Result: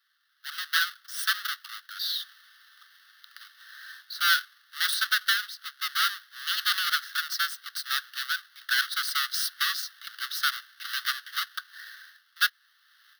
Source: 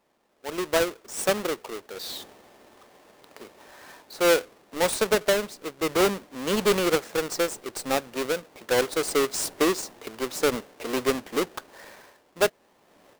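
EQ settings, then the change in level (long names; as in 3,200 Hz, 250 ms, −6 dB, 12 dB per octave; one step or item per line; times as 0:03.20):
Chebyshev high-pass with heavy ripple 1,100 Hz, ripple 3 dB
phaser with its sweep stopped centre 1,600 Hz, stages 8
+7.5 dB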